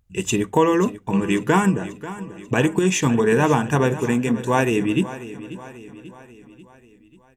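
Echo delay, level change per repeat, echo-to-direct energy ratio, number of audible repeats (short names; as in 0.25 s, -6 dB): 0.539 s, -5.5 dB, -13.5 dB, 4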